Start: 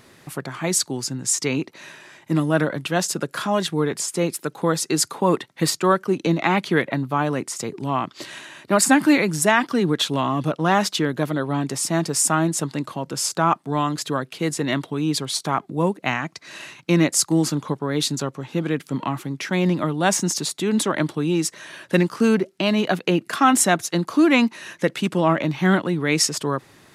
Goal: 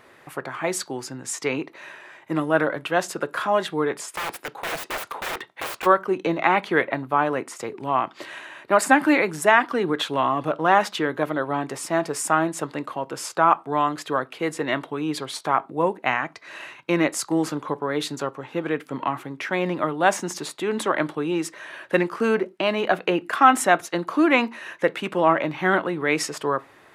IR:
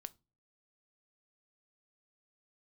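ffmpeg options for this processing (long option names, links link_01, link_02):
-filter_complex "[0:a]asplit=3[link_01][link_02][link_03];[link_01]afade=type=out:start_time=4.13:duration=0.02[link_04];[link_02]aeval=exprs='(mod(12.6*val(0)+1,2)-1)/12.6':channel_layout=same,afade=type=in:start_time=4.13:duration=0.02,afade=type=out:start_time=5.85:duration=0.02[link_05];[link_03]afade=type=in:start_time=5.85:duration=0.02[link_06];[link_04][link_05][link_06]amix=inputs=3:normalize=0,asplit=2[link_07][link_08];[link_08]highpass=370,lowpass=2700[link_09];[1:a]atrim=start_sample=2205,afade=type=out:start_time=0.18:duration=0.01,atrim=end_sample=8379[link_10];[link_09][link_10]afir=irnorm=-1:irlink=0,volume=12dB[link_11];[link_07][link_11]amix=inputs=2:normalize=0,volume=-7.5dB"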